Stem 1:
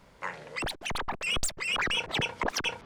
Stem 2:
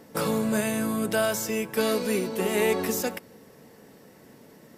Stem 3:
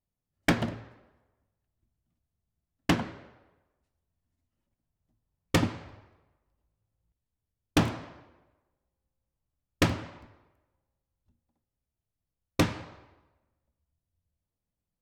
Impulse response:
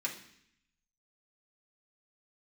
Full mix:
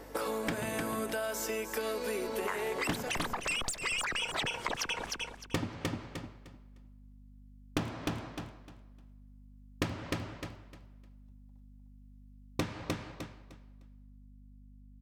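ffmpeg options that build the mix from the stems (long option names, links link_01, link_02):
-filter_complex "[0:a]equalizer=frequency=9100:width_type=o:width=1.7:gain=8,adelay=2250,volume=3dB,asplit=2[link_01][link_02];[link_02]volume=-12dB[link_03];[1:a]highpass=frequency=260:width=0.5412,highpass=frequency=260:width=1.3066,alimiter=limit=-23.5dB:level=0:latency=1:release=478,volume=0dB,asplit=2[link_04][link_05];[link_05]volume=-10dB[link_06];[2:a]dynaudnorm=framelen=710:gausssize=7:maxgain=6dB,aeval=exprs='val(0)+0.00316*(sin(2*PI*50*n/s)+sin(2*PI*2*50*n/s)/2+sin(2*PI*3*50*n/s)/3+sin(2*PI*4*50*n/s)/4+sin(2*PI*5*50*n/s)/5)':channel_layout=same,volume=-3.5dB,asplit=2[link_07][link_08];[link_08]volume=-7.5dB[link_09];[link_01][link_04]amix=inputs=2:normalize=0,equalizer=frequency=1100:width_type=o:width=2.6:gain=4.5,acompressor=threshold=-24dB:ratio=6,volume=0dB[link_10];[link_03][link_06][link_09]amix=inputs=3:normalize=0,aecho=0:1:304|608|912|1216:1|0.22|0.0484|0.0106[link_11];[link_07][link_10][link_11]amix=inputs=3:normalize=0,acompressor=threshold=-31dB:ratio=6"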